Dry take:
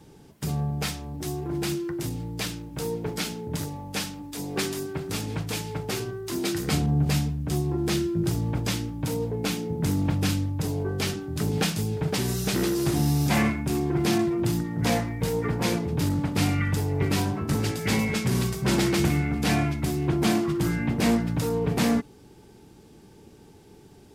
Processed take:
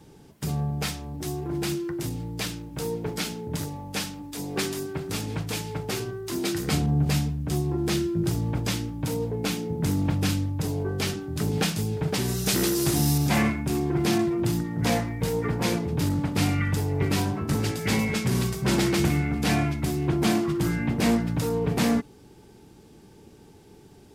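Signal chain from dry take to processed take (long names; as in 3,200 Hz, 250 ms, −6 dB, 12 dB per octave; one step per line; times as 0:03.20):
0:12.46–0:13.18: high-shelf EQ 3,900 Hz +8.5 dB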